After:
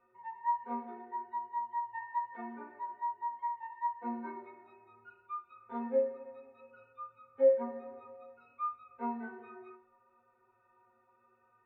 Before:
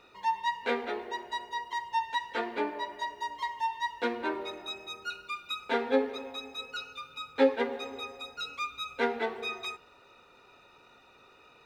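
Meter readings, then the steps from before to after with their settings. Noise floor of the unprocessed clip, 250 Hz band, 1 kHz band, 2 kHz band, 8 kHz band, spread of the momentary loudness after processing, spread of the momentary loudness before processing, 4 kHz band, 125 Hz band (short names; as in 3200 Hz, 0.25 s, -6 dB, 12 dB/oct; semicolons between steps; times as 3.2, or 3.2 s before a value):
-59 dBFS, -7.0 dB, -3.5 dB, -16.0 dB, under -25 dB, 19 LU, 11 LU, under -40 dB, n/a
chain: harmonic-percussive split percussive -18 dB; LPF 1900 Hz 24 dB/oct; metallic resonator 110 Hz, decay 0.43 s, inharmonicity 0.03; gain +3 dB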